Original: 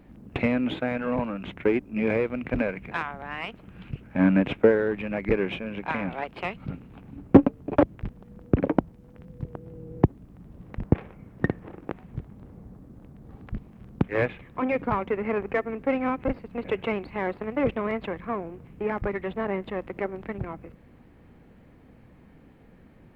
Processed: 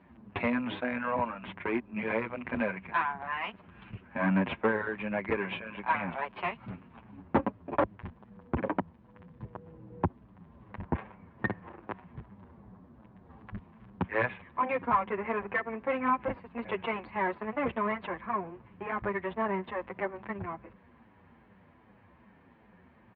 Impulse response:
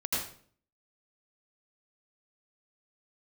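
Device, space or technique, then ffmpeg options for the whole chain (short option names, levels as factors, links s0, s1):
barber-pole flanger into a guitar amplifier: -filter_complex "[0:a]asplit=2[s0][s1];[s1]adelay=7.9,afreqshift=-2.5[s2];[s0][s2]amix=inputs=2:normalize=1,asoftclip=type=tanh:threshold=0.168,highpass=90,equalizer=f=140:t=q:w=4:g=-10,equalizer=f=290:t=q:w=4:g=-7,equalizer=f=460:t=q:w=4:g=-5,equalizer=f=1000:t=q:w=4:g=9,equalizer=f=1700:t=q:w=4:g=4,lowpass=f=3700:w=0.5412,lowpass=f=3700:w=1.3066"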